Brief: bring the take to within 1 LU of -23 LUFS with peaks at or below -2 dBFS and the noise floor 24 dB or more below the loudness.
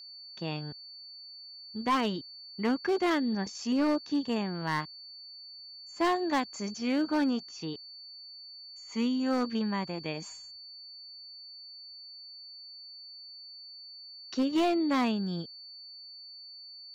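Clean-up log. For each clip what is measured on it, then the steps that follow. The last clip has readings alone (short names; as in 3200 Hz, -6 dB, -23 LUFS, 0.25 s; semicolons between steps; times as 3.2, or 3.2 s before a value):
clipped 1.0%; flat tops at -22.0 dBFS; steady tone 4500 Hz; tone level -45 dBFS; loudness -31.0 LUFS; peak -22.0 dBFS; loudness target -23.0 LUFS
-> clip repair -22 dBFS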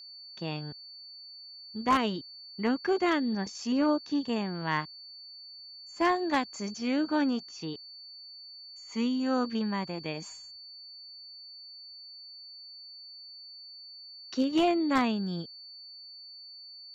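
clipped 0.0%; steady tone 4500 Hz; tone level -45 dBFS
-> notch 4500 Hz, Q 30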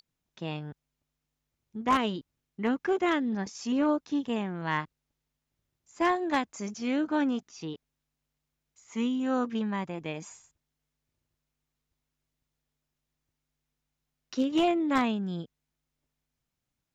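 steady tone none; loudness -30.0 LUFS; peak -13.0 dBFS; loudness target -23.0 LUFS
-> gain +7 dB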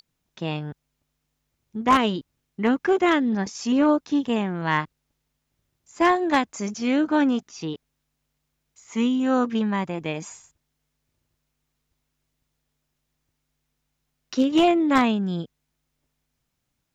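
loudness -23.0 LUFS; peak -6.0 dBFS; noise floor -78 dBFS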